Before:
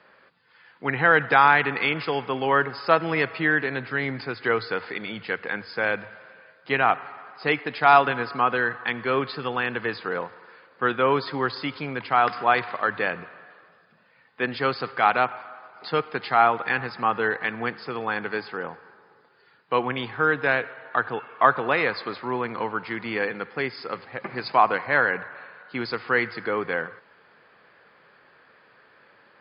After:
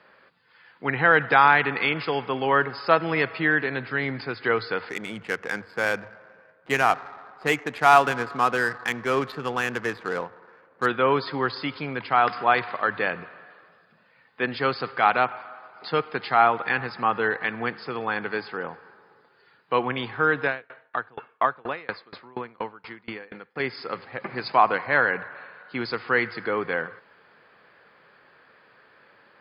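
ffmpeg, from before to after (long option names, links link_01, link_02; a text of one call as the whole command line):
ffmpeg -i in.wav -filter_complex "[0:a]asettb=1/sr,asplit=3[link_01][link_02][link_03];[link_01]atrim=end=4.894[link_04];[link_02]atrim=start=4.89:end=10.86,asetpts=PTS-STARTPTS,afade=type=in:duration=0.004:curve=qsin,afade=type=out:start_time=5.966:duration=0.004:curve=qsin,adynamicsmooth=sensitivity=4.5:basefreq=1400[link_05];[link_03]atrim=start=10.856[link_06];[link_04][link_05]acrossfade=duration=0.004:curve1=hsin:curve2=qsin[link_07];[link_07][link_06]acrossfade=duration=0.004:curve1=qsin:curve2=hsin,asettb=1/sr,asplit=3[link_08][link_09][link_10];[link_08]atrim=end=20.464[link_11];[link_09]atrim=start=20.46:end=23.6,asetpts=PTS-STARTPTS,afade=type=in:duration=0.004:curve=qsin,afade=type=out:start_time=3.136:duration=0.004:curve=qsin,aeval=exprs='val(0)*pow(10,-29*if(lt(mod(4.2*n/s,1),2*abs(4.2)/1000),1-mod(4.2*n/s,1)/(2*abs(4.2)/1000),(mod(4.2*n/s,1)-2*abs(4.2)/1000)/(1-2*abs(4.2)/1000))/20)':channel_layout=same[link_12];[link_10]atrim=start=23.596[link_13];[link_11][link_12]acrossfade=duration=0.004:curve1=hsin:curve2=qsin[link_14];[link_14][link_13]acrossfade=duration=0.004:curve1=qsin:curve2=hsin" out.wav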